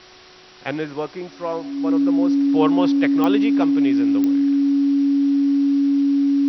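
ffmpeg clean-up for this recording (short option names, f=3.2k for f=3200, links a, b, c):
-af "adeclick=t=4,bandreject=f=368.3:t=h:w=4,bandreject=f=736.6:t=h:w=4,bandreject=f=1.1049k:t=h:w=4,bandreject=f=1.4732k:t=h:w=4,bandreject=f=280:w=30,afwtdn=0.0079"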